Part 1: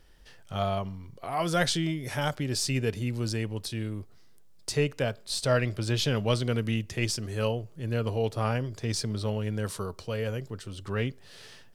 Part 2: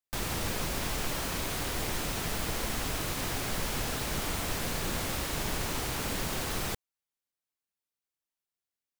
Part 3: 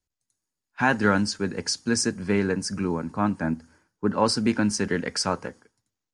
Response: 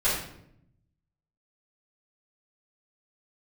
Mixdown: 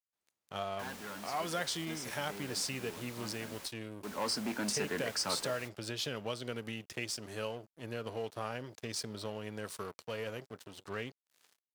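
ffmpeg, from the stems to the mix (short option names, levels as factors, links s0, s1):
-filter_complex "[0:a]aeval=exprs='sgn(val(0))*max(abs(val(0))-0.00708,0)':c=same,acompressor=threshold=0.0355:ratio=6,volume=0.841[s0];[1:a]volume=0.178[s1];[2:a]asoftclip=type=tanh:threshold=0.1,volume=0.531,afade=t=in:st=3.95:d=0.4:silence=0.266073,asplit=2[s2][s3];[s3]apad=whole_len=401263[s4];[s1][s4]sidechaingate=range=0.00794:threshold=0.00126:ratio=16:detection=peak[s5];[s0][s5][s2]amix=inputs=3:normalize=0,highpass=f=380:p=1"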